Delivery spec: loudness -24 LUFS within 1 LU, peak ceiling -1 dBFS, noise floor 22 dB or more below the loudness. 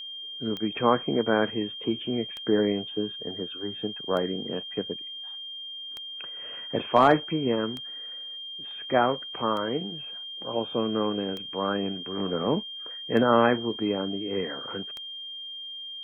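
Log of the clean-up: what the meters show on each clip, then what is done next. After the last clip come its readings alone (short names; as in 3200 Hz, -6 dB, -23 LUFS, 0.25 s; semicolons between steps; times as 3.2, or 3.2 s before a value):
clicks 9; steady tone 3200 Hz; tone level -36 dBFS; loudness -28.0 LUFS; peak -7.0 dBFS; loudness target -24.0 LUFS
-> de-click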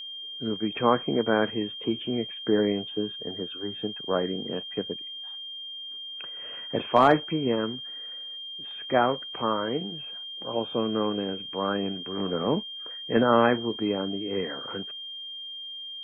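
clicks 0; steady tone 3200 Hz; tone level -36 dBFS
-> notch 3200 Hz, Q 30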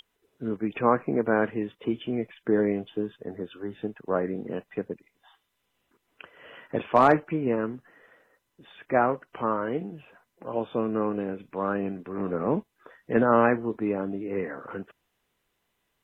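steady tone none; loudness -27.5 LUFS; peak -7.0 dBFS; loudness target -24.0 LUFS
-> gain +3.5 dB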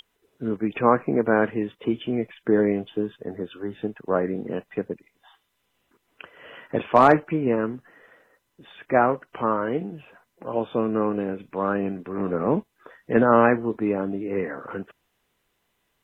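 loudness -24.0 LUFS; peak -3.5 dBFS; noise floor -73 dBFS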